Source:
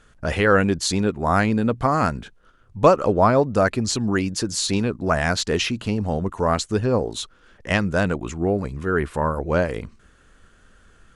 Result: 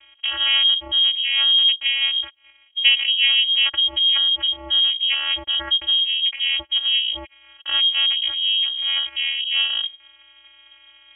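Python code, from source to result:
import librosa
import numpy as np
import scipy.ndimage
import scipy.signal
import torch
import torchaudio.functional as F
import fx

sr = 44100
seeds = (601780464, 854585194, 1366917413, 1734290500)

p1 = fx.over_compress(x, sr, threshold_db=-30.0, ratio=-1.0)
p2 = x + (p1 * librosa.db_to_amplitude(0.0))
p3 = fx.vocoder(p2, sr, bands=8, carrier='saw', carrier_hz=264.0)
y = fx.freq_invert(p3, sr, carrier_hz=3500)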